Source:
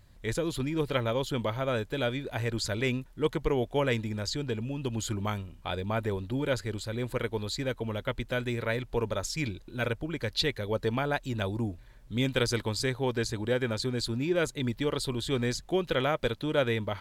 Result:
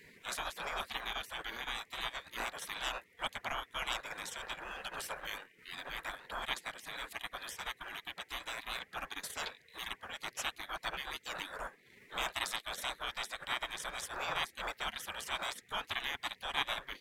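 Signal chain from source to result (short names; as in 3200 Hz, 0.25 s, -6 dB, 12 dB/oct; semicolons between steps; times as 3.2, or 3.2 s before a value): band noise 580–1500 Hz -41 dBFS; spectral gate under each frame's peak -20 dB weak; transient shaper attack -2 dB, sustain -8 dB; gain +4 dB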